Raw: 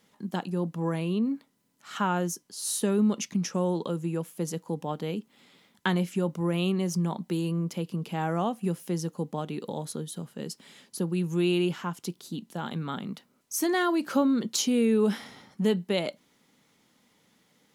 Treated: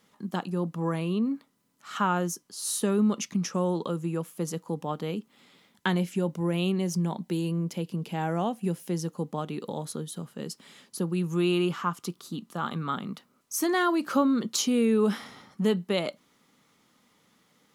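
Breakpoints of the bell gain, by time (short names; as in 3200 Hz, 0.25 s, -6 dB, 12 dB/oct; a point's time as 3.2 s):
bell 1200 Hz 0.31 oct
5.19 s +6 dB
6.22 s -4 dB
8.78 s -4 dB
9.19 s +5 dB
11.08 s +5 dB
11.7 s +14.5 dB
12.62 s +14.5 dB
13.09 s +7.5 dB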